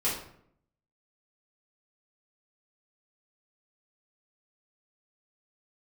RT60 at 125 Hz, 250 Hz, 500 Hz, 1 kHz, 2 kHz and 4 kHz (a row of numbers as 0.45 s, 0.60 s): 0.90 s, 0.85 s, 0.70 s, 0.60 s, 0.55 s, 0.45 s